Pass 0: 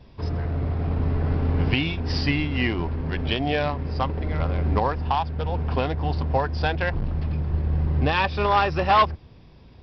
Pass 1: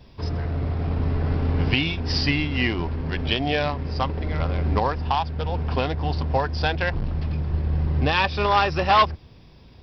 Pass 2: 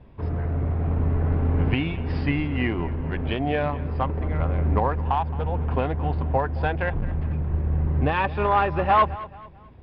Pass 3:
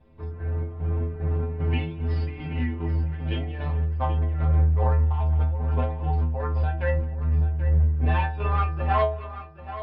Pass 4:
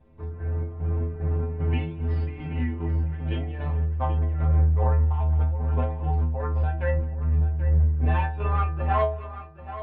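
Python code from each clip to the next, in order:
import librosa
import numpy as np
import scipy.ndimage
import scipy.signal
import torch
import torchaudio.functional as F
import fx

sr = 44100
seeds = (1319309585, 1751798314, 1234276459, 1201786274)

y1 = fx.high_shelf(x, sr, hz=4000.0, db=9.0)
y2 = scipy.signal.sosfilt(scipy.signal.bessel(4, 1700.0, 'lowpass', norm='mag', fs=sr, output='sos'), y1)
y2 = fx.echo_feedback(y2, sr, ms=218, feedback_pct=36, wet_db=-17.5)
y3 = fx.chopper(y2, sr, hz=2.5, depth_pct=60, duty_pct=60)
y3 = fx.stiff_resonator(y3, sr, f0_hz=78.0, decay_s=0.62, stiffness=0.008)
y3 = y3 + 10.0 ** (-12.5 / 20.0) * np.pad(y3, (int(782 * sr / 1000.0), 0))[:len(y3)]
y3 = y3 * 10.0 ** (7.0 / 20.0)
y4 = fx.air_absorb(y3, sr, metres=250.0)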